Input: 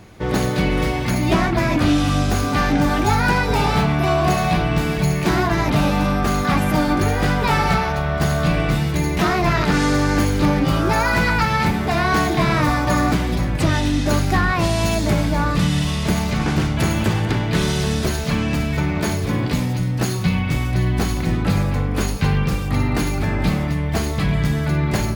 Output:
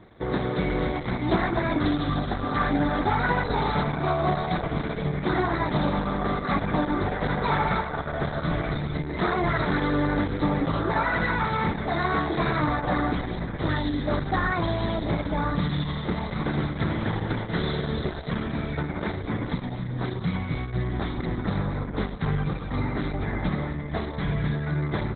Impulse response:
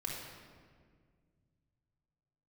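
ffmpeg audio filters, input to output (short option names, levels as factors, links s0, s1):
-filter_complex "[0:a]asuperstop=centerf=2700:order=4:qfactor=2.9,lowshelf=f=200:g=-6,asplit=2[s0][s1];[1:a]atrim=start_sample=2205,highshelf=f=4400:g=9.5[s2];[s1][s2]afir=irnorm=-1:irlink=0,volume=0.0944[s3];[s0][s3]amix=inputs=2:normalize=0,acontrast=29,volume=0.376" -ar 48000 -c:a libopus -b:a 8k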